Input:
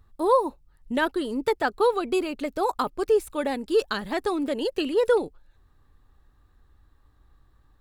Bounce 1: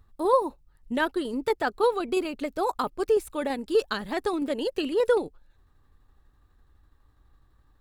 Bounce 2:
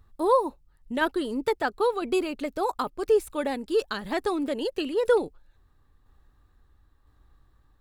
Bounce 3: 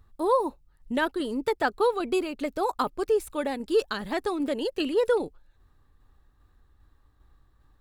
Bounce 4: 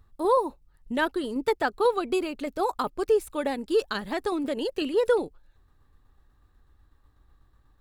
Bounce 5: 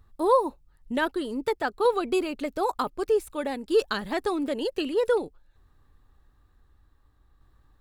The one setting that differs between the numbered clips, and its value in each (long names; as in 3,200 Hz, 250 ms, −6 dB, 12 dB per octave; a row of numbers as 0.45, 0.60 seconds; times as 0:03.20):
shaped tremolo, speed: 12, 0.99, 2.5, 8.1, 0.54 Hertz